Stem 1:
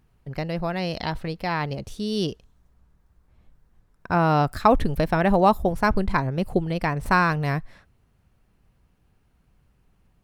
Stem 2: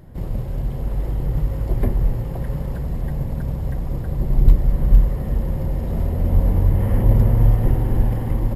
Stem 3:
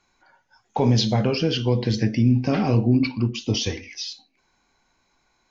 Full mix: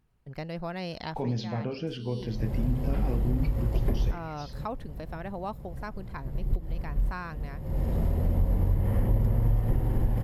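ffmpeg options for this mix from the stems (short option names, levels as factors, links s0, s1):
-filter_complex "[0:a]volume=0.398,afade=t=out:st=1.07:d=0.26:silence=0.316228,asplit=2[s0][s1];[1:a]adelay=2050,volume=0.75[s2];[2:a]highshelf=f=3100:g=-11.5,adelay=400,volume=0.282[s3];[s1]apad=whole_len=467635[s4];[s2][s4]sidechaincompress=threshold=0.00224:ratio=5:attack=8.9:release=241[s5];[s0][s5][s3]amix=inputs=3:normalize=0,acompressor=threshold=0.0794:ratio=3"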